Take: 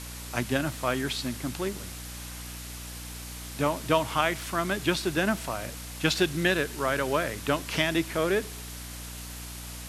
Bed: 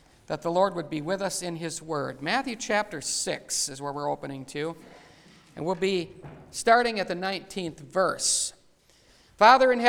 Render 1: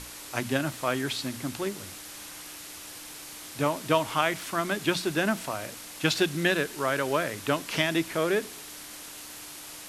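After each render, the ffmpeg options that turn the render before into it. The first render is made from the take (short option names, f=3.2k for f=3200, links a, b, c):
-af "bandreject=f=60:t=h:w=6,bandreject=f=120:t=h:w=6,bandreject=f=180:t=h:w=6,bandreject=f=240:t=h:w=6"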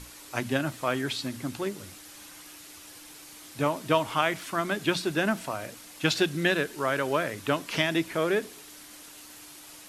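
-af "afftdn=nr=6:nf=-43"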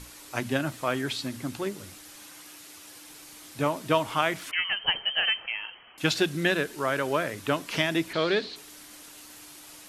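-filter_complex "[0:a]asettb=1/sr,asplit=3[a][b][c];[a]atrim=end=2.164[d];[b]atrim=start=2.16:end=3.09,asetpts=PTS-STARTPTS,afade=t=in:d=0.004:c=qsin,afade=t=out:st=0.926:d=0.004:c=qsin,highpass=f=120:p=1[e];[c]atrim=start=3.086[f];[d][e]acrossfade=d=0.004:c1=hsin:c2=qsin[g];[g][f]acrossfade=d=0.004:c1=qsin:c2=hsin,asettb=1/sr,asplit=3[h][i][j];[h]atrim=end=4.514[k];[i]atrim=start=4.51:end=5.98,asetpts=PTS-STARTPTS,afade=t=in:d=0.004:c=qsin,afade=t=out:st=1.466:d=0.004:c=qsin,lowpass=f=2.8k:t=q:w=0.5098,lowpass=f=2.8k:t=q:w=0.6013,lowpass=f=2.8k:t=q:w=0.9,lowpass=f=2.8k:t=q:w=2.563,afreqshift=-3300[l];[j]atrim=start=5.976[m];[k][l]acrossfade=d=0.004:c1=hsin:c2=qsin[n];[n][m]acrossfade=d=0.004:c1=qsin:c2=hsin,asettb=1/sr,asplit=3[o][p][q];[o]atrim=end=8.134[r];[p]atrim=start=8.13:end=8.56,asetpts=PTS-STARTPTS,afade=t=in:d=0.004:c=qsin,afade=t=out:st=0.426:d=0.004:c=qsin,lowpass=f=4.2k:t=q:w=9.4[s];[q]atrim=start=8.556[t];[r][s]acrossfade=d=0.004:c1=hsin:c2=qsin[u];[u][t]acrossfade=d=0.004:c1=qsin:c2=hsin"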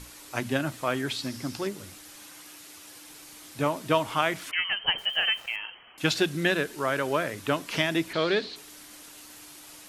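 -filter_complex "[0:a]asettb=1/sr,asplit=3[a][b][c];[a]atrim=end=1.234[d];[b]atrim=start=1.23:end=1.67,asetpts=PTS-STARTPTS,afade=t=in:d=0.004:c=qsin,afade=t=out:st=0.436:d=0.004:c=qsin,equalizer=f=5.2k:t=o:w=0.35:g=11[e];[c]atrim=start=1.666[f];[d][e]acrossfade=d=0.004:c1=hsin:c2=qsin[g];[g][f]acrossfade=d=0.004:c1=qsin:c2=hsin,asettb=1/sr,asplit=3[h][i][j];[h]atrim=end=4.984[k];[i]atrim=start=4.98:end=5.56,asetpts=PTS-STARTPTS,afade=t=in:d=0.004:c=qsin,afade=t=out:st=0.576:d=0.004:c=qsin,aeval=exprs='val(0)*gte(abs(val(0)),0.00531)':c=same[l];[j]atrim=start=5.556[m];[k][l]acrossfade=d=0.004:c1=hsin:c2=qsin[n];[n][m]acrossfade=d=0.004:c1=qsin:c2=hsin"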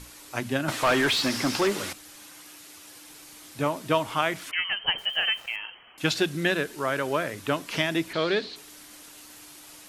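-filter_complex "[0:a]asettb=1/sr,asplit=3[a][b][c];[a]atrim=end=0.684[d];[b]atrim=start=0.68:end=1.93,asetpts=PTS-STARTPTS,afade=t=in:d=0.004:c=qsin,afade=t=out:st=1.246:d=0.004:c=qsin,asplit=2[e][f];[f]highpass=f=720:p=1,volume=24dB,asoftclip=type=tanh:threshold=-13dB[g];[e][g]amix=inputs=2:normalize=0,lowpass=f=3.4k:p=1,volume=-6dB[h];[c]atrim=start=1.926[i];[d][h]acrossfade=d=0.004:c1=hsin:c2=qsin[j];[j][i]acrossfade=d=0.004:c1=qsin:c2=hsin"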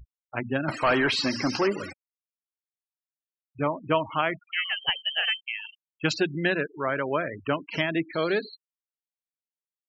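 -af "bandreject=f=3.5k:w=6.9,afftfilt=real='re*gte(hypot(re,im),0.0316)':imag='im*gte(hypot(re,im),0.0316)':win_size=1024:overlap=0.75"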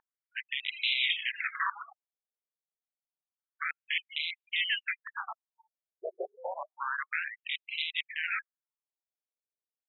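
-af "aresample=11025,aeval=exprs='(mod(8.91*val(0)+1,2)-1)/8.91':c=same,aresample=44100,afftfilt=real='re*between(b*sr/1024,510*pow(2900/510,0.5+0.5*sin(2*PI*0.29*pts/sr))/1.41,510*pow(2900/510,0.5+0.5*sin(2*PI*0.29*pts/sr))*1.41)':imag='im*between(b*sr/1024,510*pow(2900/510,0.5+0.5*sin(2*PI*0.29*pts/sr))/1.41,510*pow(2900/510,0.5+0.5*sin(2*PI*0.29*pts/sr))*1.41)':win_size=1024:overlap=0.75"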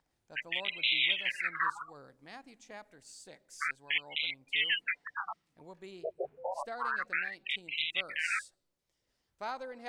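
-filter_complex "[1:a]volume=-23dB[a];[0:a][a]amix=inputs=2:normalize=0"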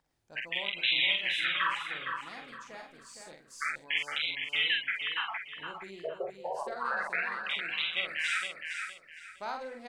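-filter_complex "[0:a]asplit=2[a][b];[b]adelay=46,volume=-4.5dB[c];[a][c]amix=inputs=2:normalize=0,aecho=1:1:463|926|1389|1852:0.501|0.14|0.0393|0.011"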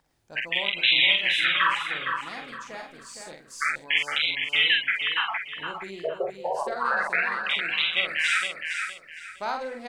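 -af "volume=7.5dB"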